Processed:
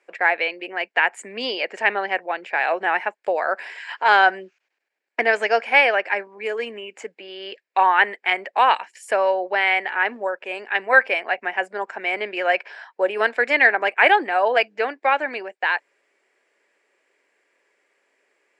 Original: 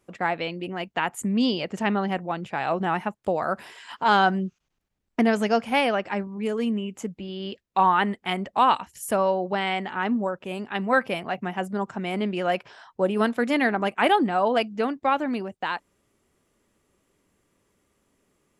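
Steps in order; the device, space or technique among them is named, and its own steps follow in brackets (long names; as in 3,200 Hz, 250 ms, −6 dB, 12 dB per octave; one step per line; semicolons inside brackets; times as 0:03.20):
phone speaker on a table (loudspeaker in its box 420–7,300 Hz, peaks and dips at 1,200 Hz −6 dB, 1,700 Hz +9 dB, 2,300 Hz +8 dB, 3,500 Hz −5 dB, 6,200 Hz −8 dB)
level +4 dB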